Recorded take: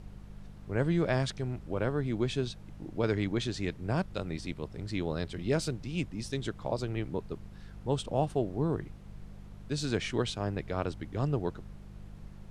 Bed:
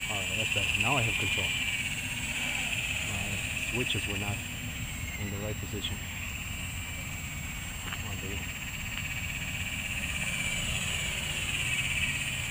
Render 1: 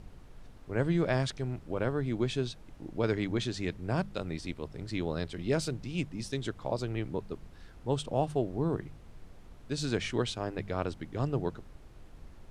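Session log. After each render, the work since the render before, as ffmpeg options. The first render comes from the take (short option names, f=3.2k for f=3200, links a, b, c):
-af "bandreject=f=50:t=h:w=4,bandreject=f=100:t=h:w=4,bandreject=f=150:t=h:w=4,bandreject=f=200:t=h:w=4"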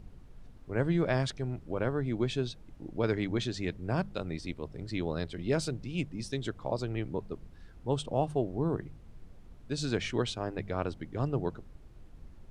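-af "afftdn=nr=6:nf=-52"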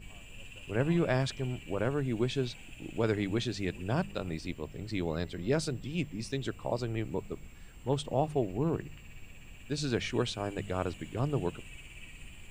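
-filter_complex "[1:a]volume=-21dB[a];[0:a][a]amix=inputs=2:normalize=0"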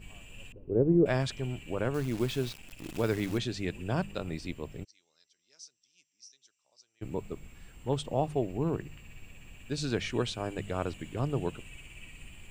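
-filter_complex "[0:a]asettb=1/sr,asplit=3[a][b][c];[a]atrim=end=0.524[d];[b]atrim=start=0.52:end=1.06,asetpts=PTS-STARTPTS,afade=t=in:d=0.004:c=qsin,afade=t=out:st=0.536:d=0.004:c=qsin,lowpass=f=410:t=q:w=2.9[e];[c]atrim=start=1.056[f];[d][e]acrossfade=d=0.004:c1=hsin:c2=qsin[g];[g][f]acrossfade=d=0.004:c1=qsin:c2=hsin,asettb=1/sr,asplit=3[h][i][j];[h]atrim=end=1.944[k];[i]atrim=start=1.94:end=3.38,asetpts=PTS-STARTPTS,afade=t=in:d=0.004:c=qsin,afade=t=out:st=1.436:d=0.004:c=qsin,acrusher=bits=8:dc=4:mix=0:aa=0.000001[l];[j]atrim=start=3.376[m];[k][l]acrossfade=d=0.004:c1=hsin:c2=qsin[n];[n][m]acrossfade=d=0.004:c1=qsin:c2=hsin,asplit=3[o][p][q];[o]afade=t=out:st=4.83:d=0.02[r];[p]bandpass=f=5.8k:t=q:w=11,afade=t=in:st=4.83:d=0.02,afade=t=out:st=7.01:d=0.02[s];[q]afade=t=in:st=7.01:d=0.02[t];[r][s][t]amix=inputs=3:normalize=0"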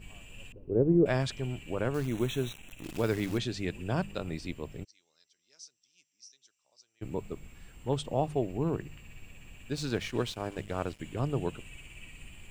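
-filter_complex "[0:a]asettb=1/sr,asplit=3[a][b][c];[a]atrim=end=2.074[d];[b]atrim=start=2.07:end=2.84,asetpts=PTS-STARTPTS,afade=t=in:d=0.004:c=qsin,afade=t=out:st=0.766:d=0.004:c=qsin,asuperstop=centerf=4800:order=20:qfactor=3.3[e];[c]atrim=start=2.836[f];[d][e]acrossfade=d=0.004:c1=hsin:c2=qsin[g];[g][f]acrossfade=d=0.004:c1=qsin:c2=hsin,asettb=1/sr,asplit=3[h][i][j];[h]atrim=end=9.754[k];[i]atrim=start=9.75:end=11,asetpts=PTS-STARTPTS,afade=t=in:d=0.004:c=qsin,afade=t=out:st=1.246:d=0.004:c=qsin,aeval=exprs='sgn(val(0))*max(abs(val(0))-0.00447,0)':c=same[l];[j]atrim=start=10.996[m];[k][l]acrossfade=d=0.004:c1=hsin:c2=qsin[n];[n][m]acrossfade=d=0.004:c1=qsin:c2=hsin"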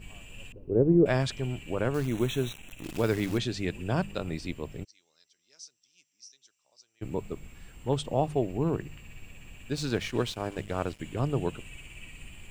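-af "volume=2.5dB"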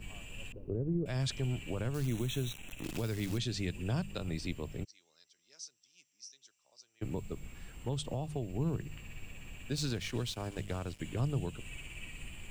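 -filter_complex "[0:a]alimiter=limit=-18dB:level=0:latency=1:release=210,acrossover=split=180|3000[a][b][c];[b]acompressor=threshold=-38dB:ratio=6[d];[a][d][c]amix=inputs=3:normalize=0"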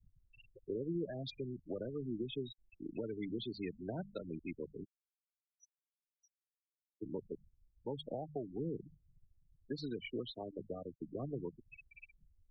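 -filter_complex "[0:a]afftfilt=real='re*gte(hypot(re,im),0.0282)':imag='im*gte(hypot(re,im),0.0282)':win_size=1024:overlap=0.75,acrossover=split=210 3900:gain=0.0891 1 0.1[a][b][c];[a][b][c]amix=inputs=3:normalize=0"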